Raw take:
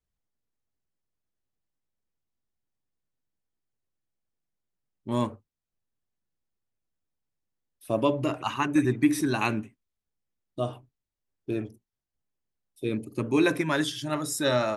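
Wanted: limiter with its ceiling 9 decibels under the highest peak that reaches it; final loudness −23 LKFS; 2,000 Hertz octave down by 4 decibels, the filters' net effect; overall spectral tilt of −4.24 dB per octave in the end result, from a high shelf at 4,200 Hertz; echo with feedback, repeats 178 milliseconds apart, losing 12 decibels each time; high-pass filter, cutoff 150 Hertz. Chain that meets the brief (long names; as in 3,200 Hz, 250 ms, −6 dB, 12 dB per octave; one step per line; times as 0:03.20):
high-pass filter 150 Hz
parametric band 2,000 Hz −7 dB
high-shelf EQ 4,200 Hz +5.5 dB
brickwall limiter −20 dBFS
repeating echo 178 ms, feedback 25%, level −12 dB
level +8.5 dB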